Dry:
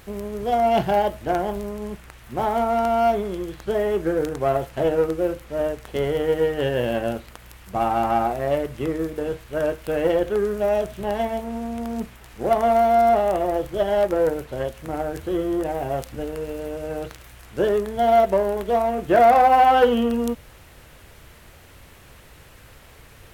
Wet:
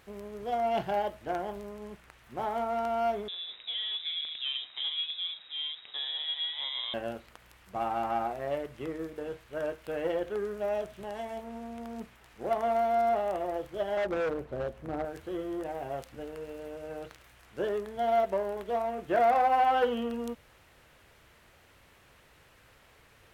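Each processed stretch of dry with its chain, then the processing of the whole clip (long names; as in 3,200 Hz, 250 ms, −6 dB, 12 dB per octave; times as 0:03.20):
0:03.28–0:06.94: downward compressor 1.5 to 1, threshold −26 dBFS + voice inversion scrambler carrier 3,800 Hz
0:10.97–0:11.37: dynamic equaliser 7,700 Hz, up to +7 dB, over −54 dBFS, Q 0.87 + downward compressor 2 to 1, threshold −25 dBFS
0:13.97–0:15.05: tilt shelving filter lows +8 dB, about 1,200 Hz + gain into a clipping stage and back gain 17 dB
whole clip: low-pass filter 2,300 Hz 6 dB per octave; spectral tilt +2 dB per octave; level −8.5 dB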